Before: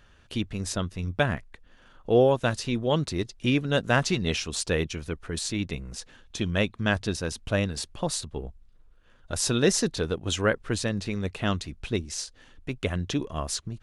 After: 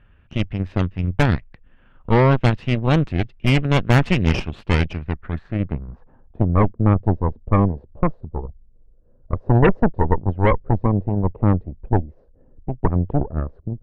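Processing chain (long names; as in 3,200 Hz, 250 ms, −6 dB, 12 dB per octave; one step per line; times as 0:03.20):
low-pass filter sweep 2,700 Hz → 530 Hz, 0:04.91–0:06.66
harmonic generator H 8 −9 dB, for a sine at −4.5 dBFS
bass and treble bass +8 dB, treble −14 dB
one half of a high-frequency compander decoder only
level −2 dB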